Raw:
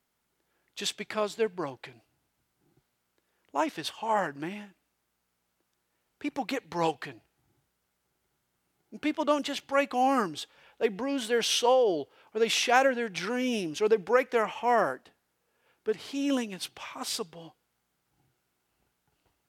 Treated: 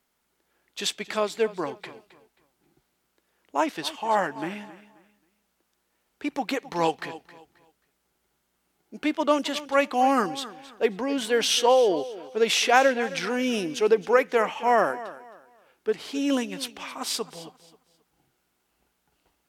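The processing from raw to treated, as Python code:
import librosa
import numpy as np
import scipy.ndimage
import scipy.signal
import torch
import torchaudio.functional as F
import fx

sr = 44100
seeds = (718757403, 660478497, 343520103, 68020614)

y = fx.peak_eq(x, sr, hz=110.0, db=-14.0, octaves=0.52)
y = fx.echo_feedback(y, sr, ms=267, feedback_pct=28, wet_db=-16.5)
y = y * librosa.db_to_amplitude(4.0)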